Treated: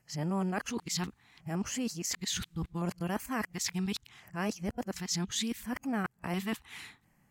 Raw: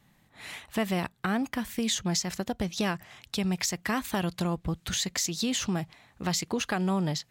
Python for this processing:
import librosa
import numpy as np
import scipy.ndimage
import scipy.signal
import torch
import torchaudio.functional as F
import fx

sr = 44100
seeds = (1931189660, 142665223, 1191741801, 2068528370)

y = np.flip(x).copy()
y = fx.filter_lfo_notch(y, sr, shape='square', hz=0.71, low_hz=590.0, high_hz=3700.0, q=1.4)
y = y * 10.0 ** (-4.5 / 20.0)